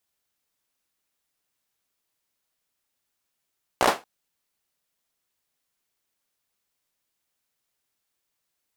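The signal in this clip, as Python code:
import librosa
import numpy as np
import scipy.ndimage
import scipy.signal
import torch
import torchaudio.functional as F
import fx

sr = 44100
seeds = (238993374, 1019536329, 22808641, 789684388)

y = fx.drum_clap(sr, seeds[0], length_s=0.23, bursts=5, spacing_ms=16, hz=700.0, decay_s=0.23)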